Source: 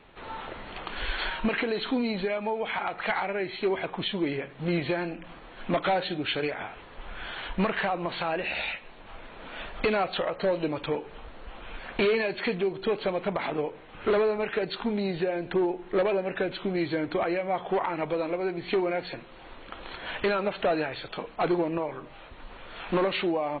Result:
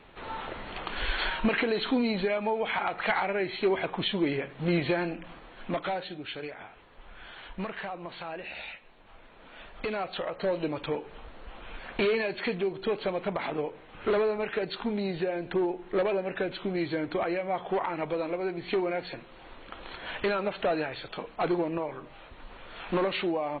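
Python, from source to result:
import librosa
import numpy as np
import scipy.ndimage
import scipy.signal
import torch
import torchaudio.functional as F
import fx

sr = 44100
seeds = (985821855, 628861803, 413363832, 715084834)

y = fx.gain(x, sr, db=fx.line((5.11, 1.0), (6.22, -9.0), (9.63, -9.0), (10.57, -2.0)))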